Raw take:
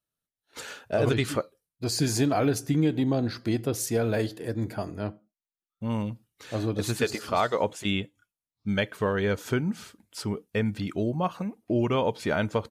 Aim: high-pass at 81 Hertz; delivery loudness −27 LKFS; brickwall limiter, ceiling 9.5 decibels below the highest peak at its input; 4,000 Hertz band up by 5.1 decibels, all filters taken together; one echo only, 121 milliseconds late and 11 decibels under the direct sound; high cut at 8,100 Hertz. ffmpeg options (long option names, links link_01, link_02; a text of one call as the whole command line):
ffmpeg -i in.wav -af "highpass=81,lowpass=8100,equalizer=frequency=4000:width_type=o:gain=6.5,alimiter=limit=-20dB:level=0:latency=1,aecho=1:1:121:0.282,volume=4dB" out.wav